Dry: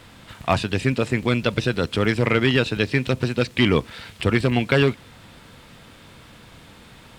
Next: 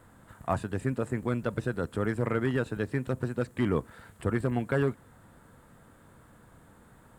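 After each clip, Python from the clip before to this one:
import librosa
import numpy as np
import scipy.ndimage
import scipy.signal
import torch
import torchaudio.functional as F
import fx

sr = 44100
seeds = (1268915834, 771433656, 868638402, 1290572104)

y = fx.band_shelf(x, sr, hz=3600.0, db=-15.0, octaves=1.7)
y = y * 10.0 ** (-8.5 / 20.0)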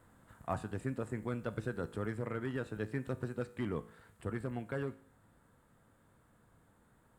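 y = fx.rider(x, sr, range_db=10, speed_s=0.5)
y = fx.comb_fb(y, sr, f0_hz=54.0, decay_s=0.58, harmonics='all', damping=0.0, mix_pct=50)
y = y * 10.0 ** (-4.0 / 20.0)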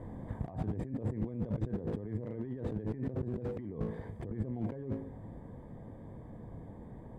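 y = fx.over_compress(x, sr, threshold_db=-49.0, ratio=-1.0)
y = np.convolve(y, np.full(32, 1.0 / 32))[:len(y)]
y = fx.slew_limit(y, sr, full_power_hz=1.9)
y = y * 10.0 ** (12.5 / 20.0)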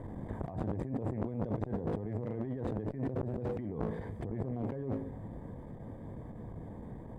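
y = fx.transformer_sat(x, sr, knee_hz=540.0)
y = y * 10.0 ** (4.0 / 20.0)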